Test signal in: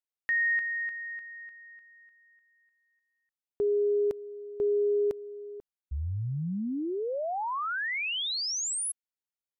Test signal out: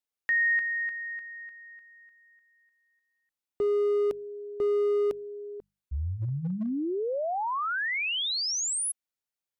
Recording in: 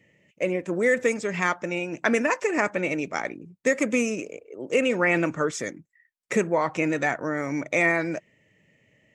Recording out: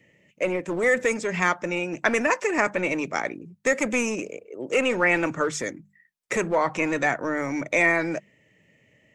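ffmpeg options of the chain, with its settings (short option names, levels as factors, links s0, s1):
-filter_complex "[0:a]bandreject=f=50:t=h:w=6,bandreject=f=100:t=h:w=6,bandreject=f=150:t=h:w=6,bandreject=f=200:t=h:w=6,acrossover=split=520|3400[s0][s1][s2];[s0]asoftclip=type=hard:threshold=0.0376[s3];[s3][s1][s2]amix=inputs=3:normalize=0,volume=1.26"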